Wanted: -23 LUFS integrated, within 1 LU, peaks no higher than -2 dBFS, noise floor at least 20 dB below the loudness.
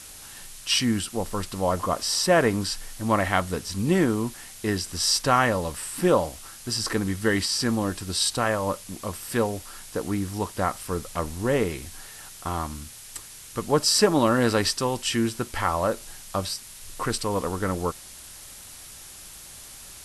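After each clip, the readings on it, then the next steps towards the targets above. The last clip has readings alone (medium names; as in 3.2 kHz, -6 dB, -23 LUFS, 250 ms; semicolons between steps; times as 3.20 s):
noise floor -44 dBFS; noise floor target -45 dBFS; loudness -25.0 LUFS; peak level -5.5 dBFS; loudness target -23.0 LUFS
-> noise print and reduce 6 dB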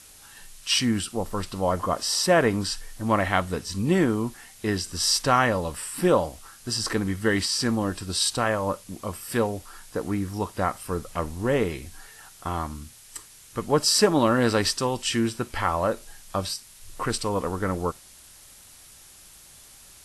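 noise floor -50 dBFS; loudness -25.0 LUFS; peak level -5.5 dBFS; loudness target -23.0 LUFS
-> trim +2 dB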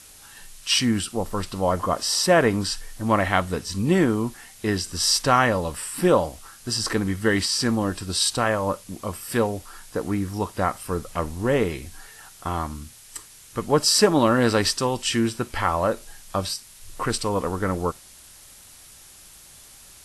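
loudness -23.0 LUFS; peak level -3.5 dBFS; noise floor -48 dBFS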